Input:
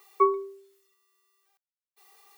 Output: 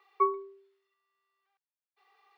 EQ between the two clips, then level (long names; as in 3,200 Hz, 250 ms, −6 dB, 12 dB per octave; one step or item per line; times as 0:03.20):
high-pass filter 720 Hz 6 dB per octave
high-frequency loss of the air 360 metres
0.0 dB